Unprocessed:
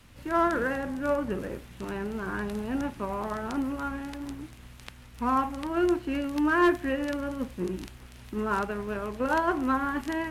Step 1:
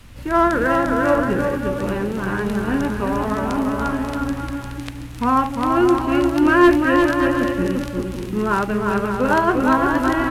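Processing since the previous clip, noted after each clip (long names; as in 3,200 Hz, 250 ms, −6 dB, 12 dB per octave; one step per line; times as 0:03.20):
low-shelf EQ 93 Hz +7.5 dB
on a send: bouncing-ball delay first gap 350 ms, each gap 0.65×, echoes 5
on the sum: level +8 dB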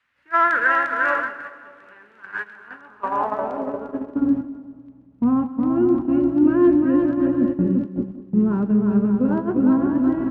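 band-pass filter sweep 1,700 Hz → 210 Hz, 0:02.56–0:04.59
noise gate −28 dBFS, range −19 dB
echo with a time of its own for lows and highs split 1,200 Hz, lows 190 ms, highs 129 ms, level −15.5 dB
level +6.5 dB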